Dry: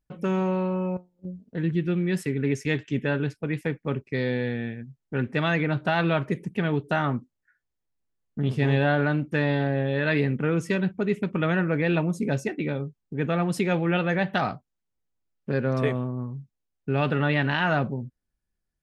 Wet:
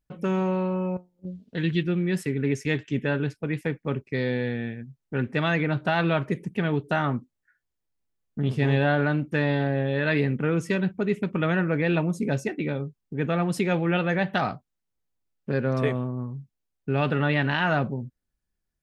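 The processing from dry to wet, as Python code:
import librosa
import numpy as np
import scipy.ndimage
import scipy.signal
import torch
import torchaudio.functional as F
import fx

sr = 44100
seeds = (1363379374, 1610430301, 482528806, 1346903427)

y = fx.peak_eq(x, sr, hz=3600.0, db=14.0, octaves=1.6, at=(1.26, 1.82), fade=0.02)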